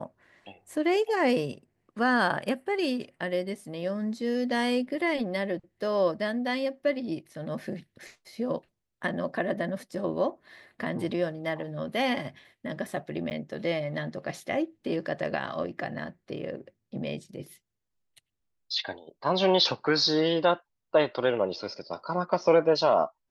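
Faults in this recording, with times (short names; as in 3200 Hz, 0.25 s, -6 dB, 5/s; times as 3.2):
13.3–13.31 gap 9.7 ms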